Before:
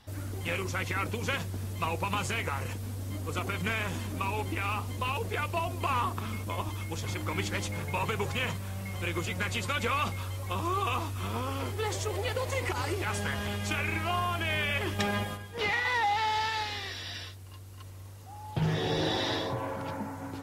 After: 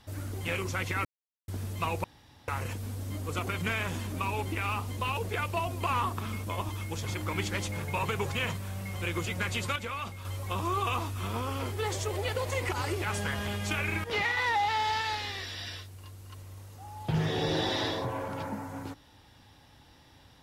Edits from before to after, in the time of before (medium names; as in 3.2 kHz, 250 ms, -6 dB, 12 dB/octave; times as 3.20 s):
1.05–1.48 s: mute
2.04–2.48 s: room tone
9.76–10.25 s: gain -7 dB
14.04–15.52 s: delete